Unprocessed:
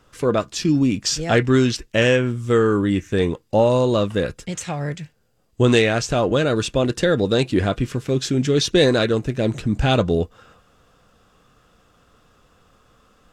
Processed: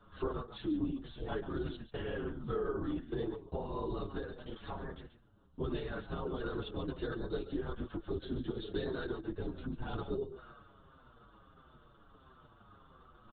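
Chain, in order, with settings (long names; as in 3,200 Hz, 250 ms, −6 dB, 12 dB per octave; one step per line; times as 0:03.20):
downward compressor 8 to 1, threshold −30 dBFS, peak gain reduction 18 dB
phaser with its sweep stopped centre 610 Hz, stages 6
slap from a distant wall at 24 metres, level −11 dB
linear-prediction vocoder at 8 kHz whisper
barber-pole flanger 6.7 ms −1.5 Hz
level +1.5 dB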